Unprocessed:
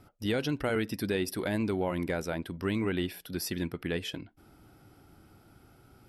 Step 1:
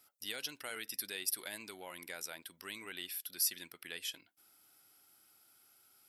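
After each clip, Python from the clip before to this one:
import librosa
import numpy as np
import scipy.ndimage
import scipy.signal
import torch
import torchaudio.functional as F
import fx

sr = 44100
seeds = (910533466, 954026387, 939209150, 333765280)

y = np.diff(x, prepend=0.0)
y = y * 10.0 ** (4.0 / 20.0)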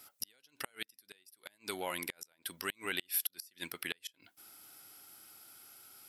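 y = fx.gate_flip(x, sr, shuts_db=-29.0, range_db=-35)
y = y * 10.0 ** (10.0 / 20.0)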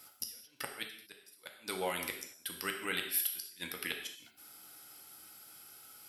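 y = fx.rev_gated(x, sr, seeds[0], gate_ms=250, shape='falling', drr_db=2.5)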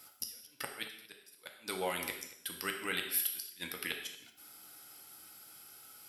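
y = x + 10.0 ** (-19.5 / 20.0) * np.pad(x, (int(228 * sr / 1000.0), 0))[:len(x)]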